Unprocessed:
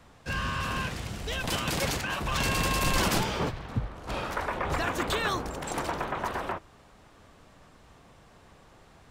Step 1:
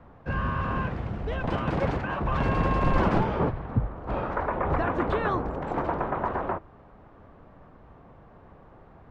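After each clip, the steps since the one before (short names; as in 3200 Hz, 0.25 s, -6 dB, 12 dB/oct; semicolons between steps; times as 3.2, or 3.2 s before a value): LPF 1200 Hz 12 dB/oct; gain +5 dB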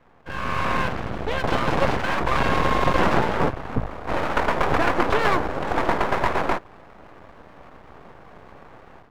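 AGC gain up to 11 dB; low shelf 230 Hz -9.5 dB; half-wave rectifier; gain +2 dB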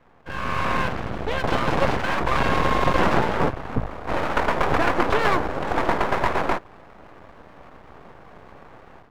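nothing audible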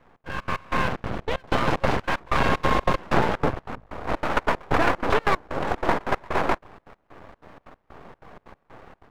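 step gate "xx.xx.x..x" 188 bpm -24 dB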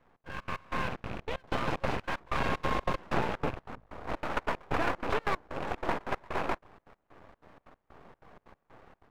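rattling part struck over -30 dBFS, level -24 dBFS; gain -9 dB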